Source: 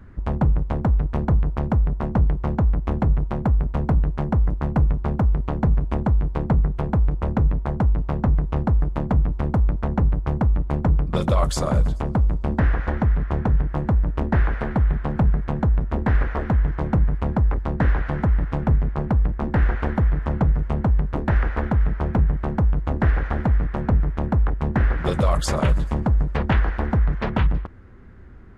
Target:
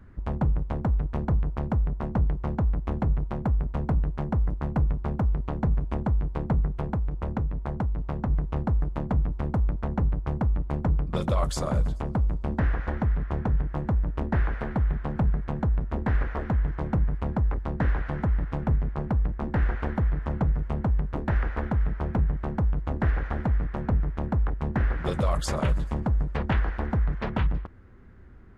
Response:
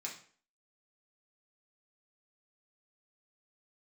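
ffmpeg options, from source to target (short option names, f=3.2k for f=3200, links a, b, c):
-filter_complex "[0:a]asettb=1/sr,asplit=3[a][b][c];[a]atrim=end=6.874[d];[b]atrim=start=6.87:end=8.3,asetpts=PTS-STARTPTS,afade=t=in:d=0.004:c=qsin,afade=t=out:st=1.426:d=0.004:c=qsin,acompressor=threshold=-18dB:ratio=6[e];[c]atrim=start=8.296[f];[d][e]acrossfade=d=0.004:c1=hsin:c2=qsin[g];[g][f]acrossfade=d=0.004:c1=qsin:c2=hsin,volume=-5.5dB"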